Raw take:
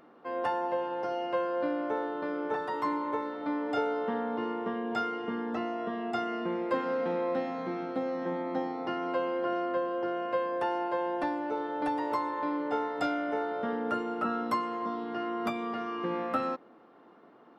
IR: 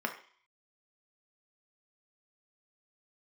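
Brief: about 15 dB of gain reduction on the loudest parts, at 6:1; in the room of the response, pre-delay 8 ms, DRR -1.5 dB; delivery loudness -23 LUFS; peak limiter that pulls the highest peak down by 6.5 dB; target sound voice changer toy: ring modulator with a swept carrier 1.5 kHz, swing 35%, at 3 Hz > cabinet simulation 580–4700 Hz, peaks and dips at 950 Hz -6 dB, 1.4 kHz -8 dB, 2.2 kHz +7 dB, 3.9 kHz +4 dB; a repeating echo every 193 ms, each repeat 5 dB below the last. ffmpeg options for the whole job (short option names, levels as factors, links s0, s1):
-filter_complex "[0:a]acompressor=threshold=0.00794:ratio=6,alimiter=level_in=4.47:limit=0.0631:level=0:latency=1,volume=0.224,aecho=1:1:193|386|579|772|965|1158|1351:0.562|0.315|0.176|0.0988|0.0553|0.031|0.0173,asplit=2[s0][s1];[1:a]atrim=start_sample=2205,adelay=8[s2];[s1][s2]afir=irnorm=-1:irlink=0,volume=0.596[s3];[s0][s3]amix=inputs=2:normalize=0,aeval=exprs='val(0)*sin(2*PI*1500*n/s+1500*0.35/3*sin(2*PI*3*n/s))':c=same,highpass=580,equalizer=f=950:t=q:w=4:g=-6,equalizer=f=1400:t=q:w=4:g=-8,equalizer=f=2200:t=q:w=4:g=7,equalizer=f=3900:t=q:w=4:g=4,lowpass=f=4700:w=0.5412,lowpass=f=4700:w=1.3066,volume=5.96"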